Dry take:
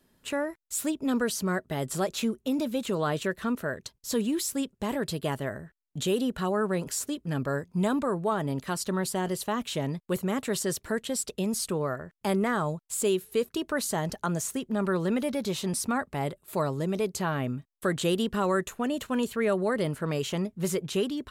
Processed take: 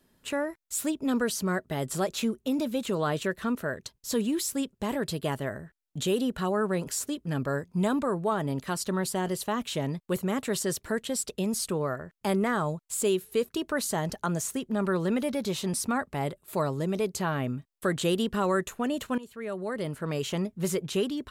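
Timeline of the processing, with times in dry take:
0:19.18–0:20.33: fade in, from −18.5 dB

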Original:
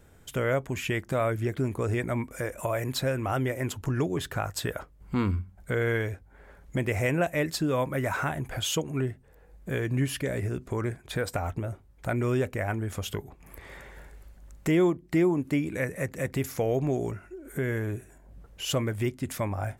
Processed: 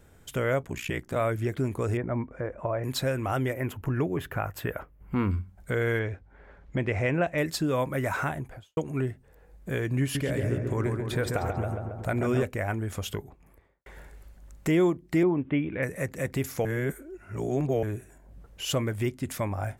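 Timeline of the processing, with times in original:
0:00.62–0:01.16: ring modulation 30 Hz
0:01.97–0:02.84: low-pass filter 1,300 Hz
0:03.53–0:05.31: flat-topped bell 5,800 Hz −12 dB
0:05.99–0:07.38: low-pass filter 3,800 Hz
0:08.24–0:08.77: fade out and dull
0:10.01–0:12.43: feedback echo with a low-pass in the loop 137 ms, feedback 71%, low-pass 1,900 Hz, level −4 dB
0:13.07–0:13.86: fade out and dull
0:15.23–0:15.83: Butterworth low-pass 3,500 Hz 96 dB per octave
0:16.65–0:17.83: reverse

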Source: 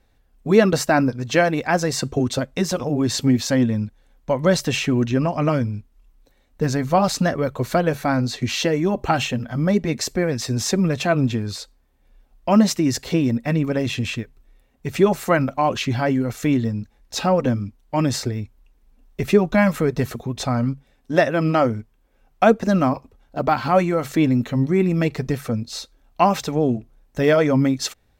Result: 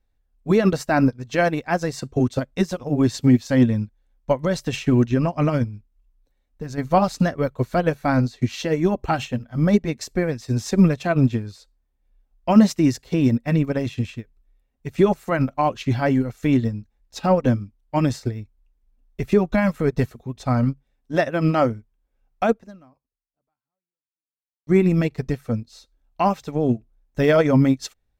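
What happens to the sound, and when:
0:05.64–0:06.78: downward compressor 2.5 to 1, threshold −23 dBFS
0:22.45–0:24.67: fade out exponential
whole clip: low-shelf EQ 61 Hz +11 dB; brickwall limiter −10.5 dBFS; expander for the loud parts 2.5 to 1, over −29 dBFS; level +7 dB

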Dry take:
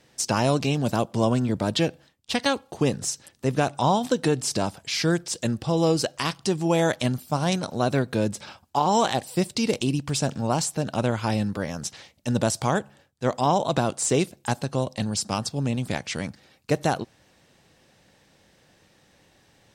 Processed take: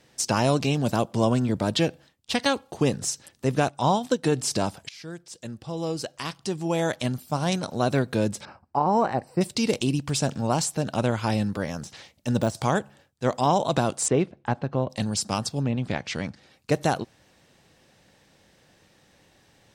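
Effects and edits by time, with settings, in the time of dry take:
0:03.69–0:04.32: expander for the loud parts, over −35 dBFS
0:04.89–0:07.94: fade in, from −20 dB
0:08.45–0:09.41: moving average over 13 samples
0:11.62–0:12.55: de-essing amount 80%
0:14.08–0:14.90: low-pass filter 2,000 Hz
0:15.60–0:16.72: treble cut that deepens with the level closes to 2,500 Hz, closed at −21.5 dBFS

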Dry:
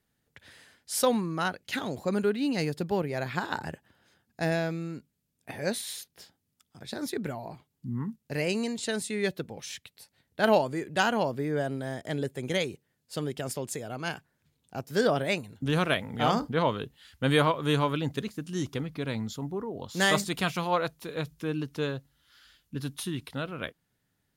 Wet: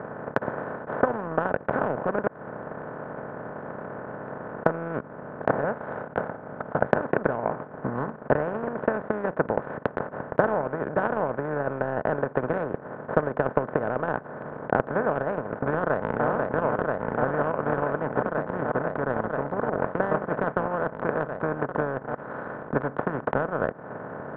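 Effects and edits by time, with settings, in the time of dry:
0:02.27–0:04.66: fill with room tone
0:05.64–0:06.88: comb filter 1.4 ms
0:15.80–0:16.26: delay throw 490 ms, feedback 75%, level −2.5 dB
whole clip: compressor on every frequency bin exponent 0.2; Chebyshev low-pass filter 1,500 Hz, order 4; transient designer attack +11 dB, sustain −11 dB; level −10 dB

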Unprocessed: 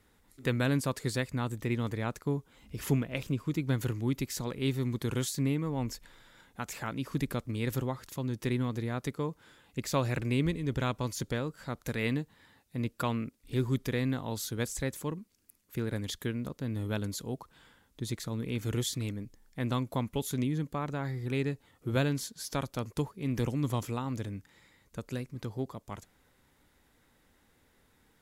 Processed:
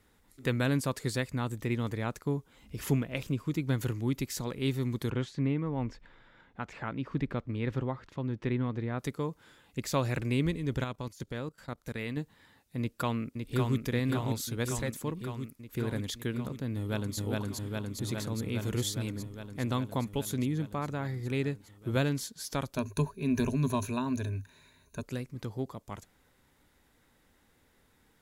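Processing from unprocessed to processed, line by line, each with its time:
0:05.10–0:08.99: low-pass filter 2,600 Hz
0:10.84–0:12.17: output level in coarse steps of 18 dB
0:12.79–0:13.80: delay throw 560 ms, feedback 75%, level −4.5 dB
0:16.76–0:17.17: delay throw 410 ms, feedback 80%, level −1 dB
0:22.76–0:25.03: EQ curve with evenly spaced ripples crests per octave 1.5, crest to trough 15 dB

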